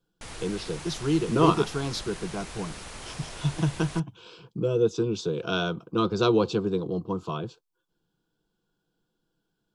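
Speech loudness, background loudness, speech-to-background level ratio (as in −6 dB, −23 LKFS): −27.5 LKFS, −40.5 LKFS, 13.0 dB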